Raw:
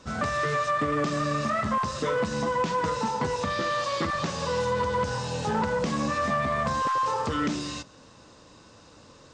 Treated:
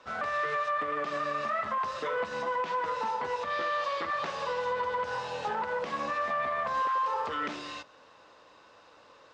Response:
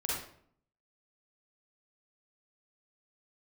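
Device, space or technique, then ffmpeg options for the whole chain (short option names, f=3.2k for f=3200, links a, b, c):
DJ mixer with the lows and highs turned down: -filter_complex "[0:a]acrossover=split=440 3700:gain=0.112 1 0.141[a][b][c];[a][b][c]amix=inputs=3:normalize=0,alimiter=limit=-23dB:level=0:latency=1:release=115"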